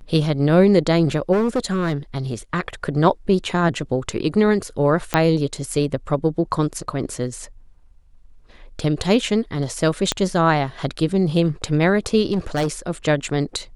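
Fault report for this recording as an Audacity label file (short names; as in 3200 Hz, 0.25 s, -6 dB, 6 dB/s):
1.320000	1.940000	clipped -15.5 dBFS
5.140000	5.140000	pop -3 dBFS
10.120000	10.120000	pop -5 dBFS
12.320000	12.680000	clipped -16.5 dBFS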